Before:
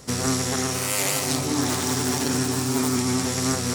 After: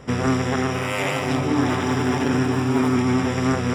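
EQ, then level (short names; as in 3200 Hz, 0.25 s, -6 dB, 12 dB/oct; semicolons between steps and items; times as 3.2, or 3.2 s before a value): polynomial smoothing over 25 samples; +4.5 dB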